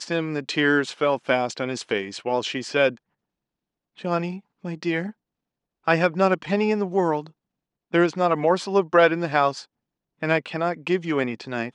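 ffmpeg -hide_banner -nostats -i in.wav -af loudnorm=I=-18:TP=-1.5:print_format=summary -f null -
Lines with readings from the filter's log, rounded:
Input Integrated:    -23.3 LUFS
Input True Peak:      -3.1 dBTP
Input LRA:             5.1 LU
Input Threshold:     -33.7 LUFS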